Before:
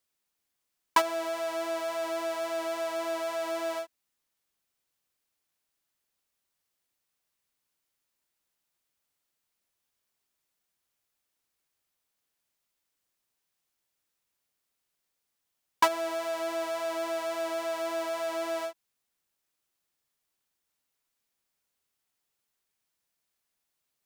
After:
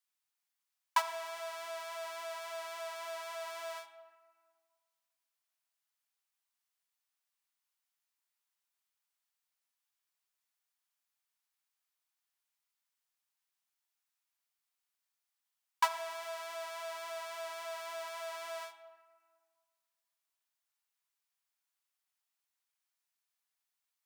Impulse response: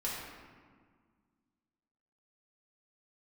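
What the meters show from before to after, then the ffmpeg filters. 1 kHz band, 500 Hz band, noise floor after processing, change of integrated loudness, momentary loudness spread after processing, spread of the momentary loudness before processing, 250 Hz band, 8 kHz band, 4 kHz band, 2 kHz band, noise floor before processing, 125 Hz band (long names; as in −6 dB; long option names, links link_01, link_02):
−6.5 dB, −12.0 dB, below −85 dBFS, −8.5 dB, 11 LU, 6 LU, below −30 dB, −5.5 dB, −5.5 dB, −6.0 dB, −82 dBFS, can't be measured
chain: -filter_complex "[0:a]highpass=frequency=760:width=0.5412,highpass=frequency=760:width=1.3066,asplit=2[link_01][link_02];[1:a]atrim=start_sample=2205[link_03];[link_02][link_03]afir=irnorm=-1:irlink=0,volume=-11.5dB[link_04];[link_01][link_04]amix=inputs=2:normalize=0,volume=-7.5dB"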